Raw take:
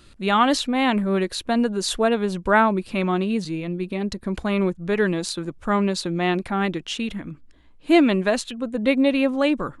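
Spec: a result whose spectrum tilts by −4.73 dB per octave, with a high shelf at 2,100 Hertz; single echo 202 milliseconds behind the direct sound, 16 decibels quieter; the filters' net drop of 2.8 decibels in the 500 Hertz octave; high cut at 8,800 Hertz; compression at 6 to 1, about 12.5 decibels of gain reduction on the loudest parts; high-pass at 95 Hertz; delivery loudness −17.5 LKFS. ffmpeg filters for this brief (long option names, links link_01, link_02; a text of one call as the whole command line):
ffmpeg -i in.wav -af "highpass=95,lowpass=8800,equalizer=frequency=500:width_type=o:gain=-3.5,highshelf=frequency=2100:gain=-5,acompressor=threshold=-27dB:ratio=6,aecho=1:1:202:0.158,volume=14dB" out.wav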